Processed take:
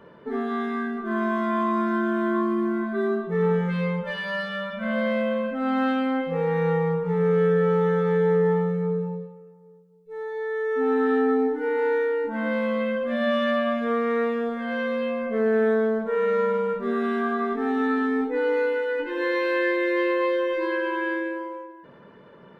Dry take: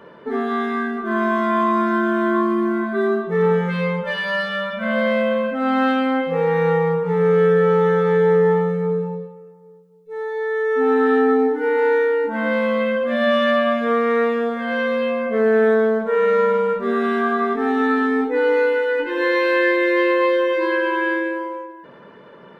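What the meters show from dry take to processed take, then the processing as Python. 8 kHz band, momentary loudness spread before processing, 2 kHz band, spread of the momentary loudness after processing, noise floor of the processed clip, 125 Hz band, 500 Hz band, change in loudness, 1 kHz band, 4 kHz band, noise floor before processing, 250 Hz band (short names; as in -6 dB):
n/a, 7 LU, -7.0 dB, 7 LU, -49 dBFS, -2.5 dB, -6.0 dB, -5.5 dB, -6.5 dB, -7.0 dB, -44 dBFS, -4.0 dB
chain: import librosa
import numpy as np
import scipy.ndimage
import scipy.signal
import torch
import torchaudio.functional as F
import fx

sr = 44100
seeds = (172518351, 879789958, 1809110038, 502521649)

y = fx.low_shelf(x, sr, hz=170.0, db=9.5)
y = F.gain(torch.from_numpy(y), -7.0).numpy()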